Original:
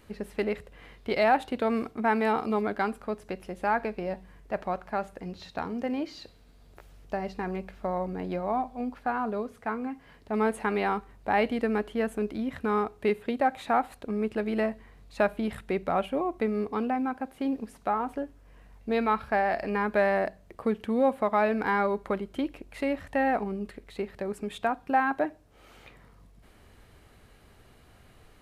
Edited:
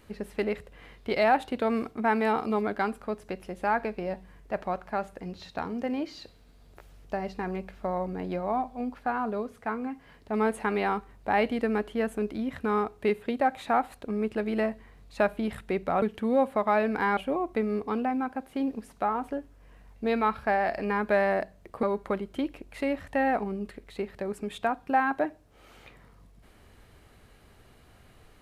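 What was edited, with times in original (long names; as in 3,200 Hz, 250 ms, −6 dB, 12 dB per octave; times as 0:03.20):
0:20.68–0:21.83: move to 0:16.02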